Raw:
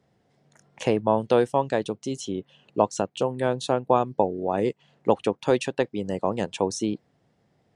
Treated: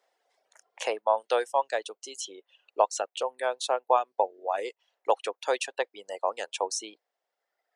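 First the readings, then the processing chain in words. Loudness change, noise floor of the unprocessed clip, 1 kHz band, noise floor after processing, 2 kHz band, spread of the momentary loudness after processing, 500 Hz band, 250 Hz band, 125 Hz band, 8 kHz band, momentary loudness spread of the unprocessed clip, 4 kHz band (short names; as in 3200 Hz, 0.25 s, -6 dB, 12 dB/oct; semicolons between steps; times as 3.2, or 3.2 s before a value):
-4.0 dB, -68 dBFS, -1.0 dB, under -85 dBFS, -0.5 dB, 12 LU, -5.5 dB, -21.5 dB, under -40 dB, +1.5 dB, 9 LU, 0.0 dB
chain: reverb removal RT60 1.5 s; HPF 550 Hz 24 dB/oct; high shelf 7400 Hz +4 dB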